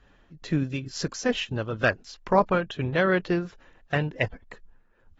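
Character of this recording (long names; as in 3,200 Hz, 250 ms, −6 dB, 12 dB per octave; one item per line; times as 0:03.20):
tremolo triangle 2.2 Hz, depth 50%
AAC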